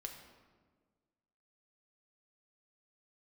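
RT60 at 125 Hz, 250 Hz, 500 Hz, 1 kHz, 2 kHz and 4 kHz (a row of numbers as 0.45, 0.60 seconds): 1.8, 1.8, 1.7, 1.4, 1.1, 0.90 seconds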